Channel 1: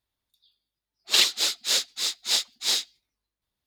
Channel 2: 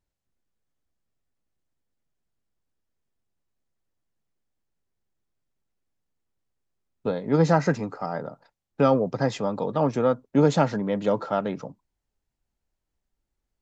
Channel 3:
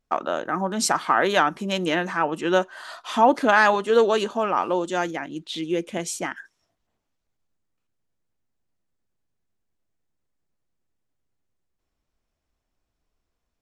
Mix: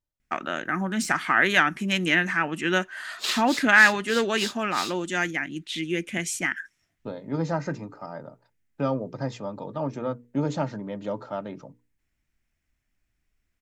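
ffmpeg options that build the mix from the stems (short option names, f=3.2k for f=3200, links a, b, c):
-filter_complex "[0:a]adelay=2100,volume=-9.5dB[a];[1:a]equalizer=f=130:t=o:w=0.63:g=8.5,bandreject=f=60:t=h:w=6,bandreject=f=120:t=h:w=6,bandreject=f=180:t=h:w=6,bandreject=f=240:t=h:w=6,bandreject=f=300:t=h:w=6,bandreject=f=360:t=h:w=6,bandreject=f=420:t=h:w=6,bandreject=f=480:t=h:w=6,aecho=1:1:3.3:0.36,volume=-8dB[b];[2:a]deesser=0.5,equalizer=f=500:t=o:w=1:g=-11,equalizer=f=1k:t=o:w=1:g=-10,equalizer=f=2k:t=o:w=1:g=9,equalizer=f=4k:t=o:w=1:g=-6,adelay=200,volume=3dB[c];[a][b][c]amix=inputs=3:normalize=0"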